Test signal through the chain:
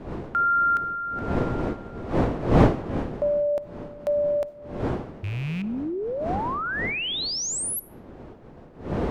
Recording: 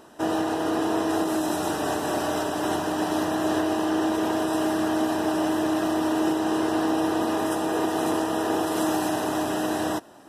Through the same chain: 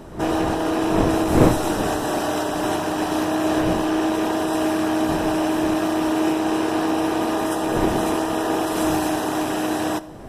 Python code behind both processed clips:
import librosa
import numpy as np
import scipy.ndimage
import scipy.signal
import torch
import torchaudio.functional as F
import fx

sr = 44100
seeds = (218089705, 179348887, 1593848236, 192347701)

y = fx.rattle_buzz(x, sr, strikes_db=-32.0, level_db=-31.0)
y = fx.dmg_wind(y, sr, seeds[0], corner_hz=430.0, level_db=-32.0)
y = fx.rev_freeverb(y, sr, rt60_s=0.77, hf_ratio=0.8, predelay_ms=15, drr_db=18.0)
y = y * 10.0 ** (3.0 / 20.0)